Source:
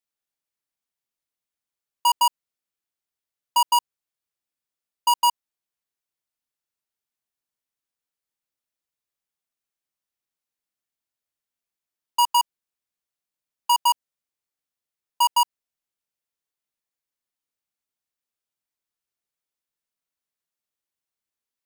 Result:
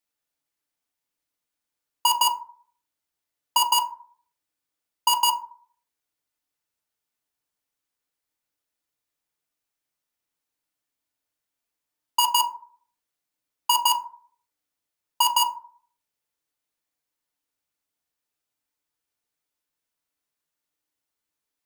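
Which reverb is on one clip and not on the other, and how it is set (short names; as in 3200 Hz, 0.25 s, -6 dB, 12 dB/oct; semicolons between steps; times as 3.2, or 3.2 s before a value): FDN reverb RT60 0.51 s, low-frequency decay 0.85×, high-frequency decay 0.4×, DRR 4 dB; gain +3 dB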